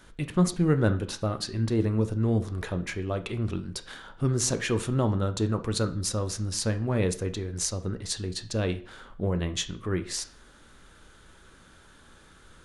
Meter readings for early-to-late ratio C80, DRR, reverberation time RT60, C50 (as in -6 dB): 19.5 dB, 8.5 dB, 0.45 s, 14.5 dB